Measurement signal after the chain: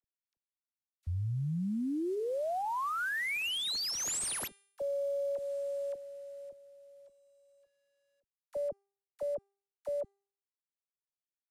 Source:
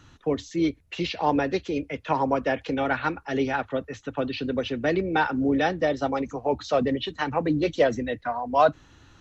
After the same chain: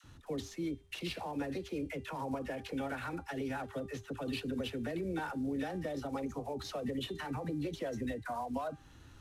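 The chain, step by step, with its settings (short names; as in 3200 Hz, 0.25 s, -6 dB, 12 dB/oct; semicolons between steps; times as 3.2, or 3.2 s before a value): CVSD 64 kbps; compressor, threshold -24 dBFS; low shelf 280 Hz +5 dB; de-hum 397.5 Hz, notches 26; limiter -24 dBFS; dispersion lows, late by 42 ms, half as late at 710 Hz; gain -6 dB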